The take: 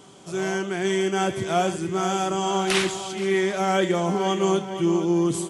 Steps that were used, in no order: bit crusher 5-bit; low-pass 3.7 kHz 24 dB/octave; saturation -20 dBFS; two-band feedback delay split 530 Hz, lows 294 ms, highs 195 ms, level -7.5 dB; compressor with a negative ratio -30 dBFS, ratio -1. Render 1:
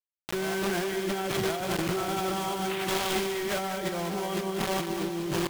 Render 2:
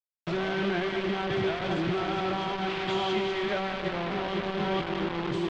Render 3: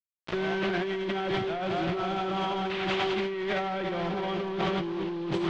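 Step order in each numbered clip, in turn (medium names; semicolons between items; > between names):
low-pass > bit crusher > compressor with a negative ratio > saturation > two-band feedback delay; compressor with a negative ratio > two-band feedback delay > bit crusher > saturation > low-pass; two-band feedback delay > bit crusher > saturation > low-pass > compressor with a negative ratio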